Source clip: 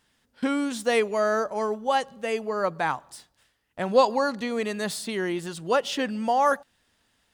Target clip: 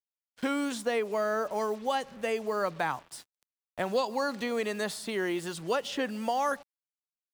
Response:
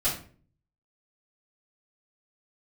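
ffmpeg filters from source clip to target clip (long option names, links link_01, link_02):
-filter_complex "[0:a]asettb=1/sr,asplit=3[link_01][link_02][link_03];[link_01]atrim=end=0.854[link_04];[link_02]atrim=start=0.85:end=1.53,asetpts=PTS-STARTPTS,afade=type=in:duration=0.004:curve=qsin,afade=type=out:start_time=0.676:duration=0.004:curve=qsin,highshelf=frequency=3700:gain=-10[link_05];[link_03]atrim=start=1.526[link_06];[link_04][link_05]acrossfade=duration=0.004:curve1=hsin:curve2=qsin[link_07];[link_07][link_06]acrossfade=duration=0.004:curve1=qsin:curve2=hsin,acrusher=bits=7:mix=0:aa=0.5,acrossover=split=280|1900[link_08][link_09][link_10];[link_08]acompressor=threshold=-43dB:ratio=4[link_11];[link_09]acompressor=threshold=-28dB:ratio=4[link_12];[link_10]acompressor=threshold=-38dB:ratio=4[link_13];[link_11][link_12][link_13]amix=inputs=3:normalize=0"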